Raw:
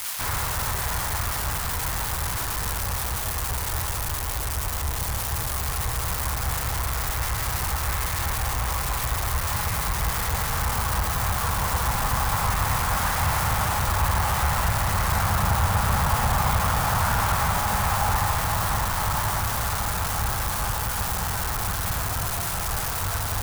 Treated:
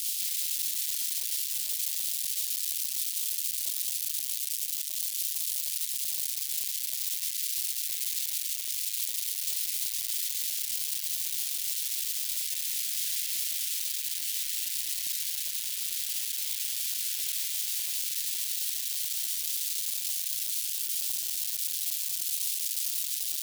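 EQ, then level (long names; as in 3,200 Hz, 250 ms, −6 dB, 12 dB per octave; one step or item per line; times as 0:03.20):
inverse Chebyshev high-pass filter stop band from 1,200 Hz, stop band 50 dB
0.0 dB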